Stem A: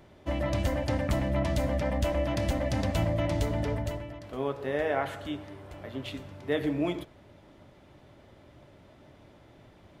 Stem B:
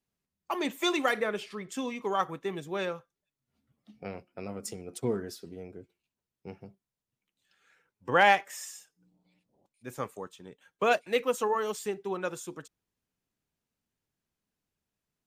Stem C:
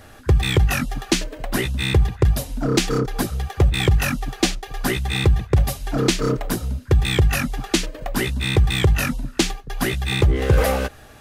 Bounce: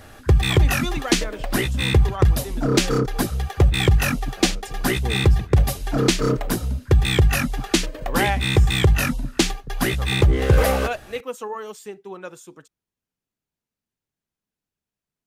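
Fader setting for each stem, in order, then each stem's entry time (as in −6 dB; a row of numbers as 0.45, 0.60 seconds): muted, −2.5 dB, +0.5 dB; muted, 0.00 s, 0.00 s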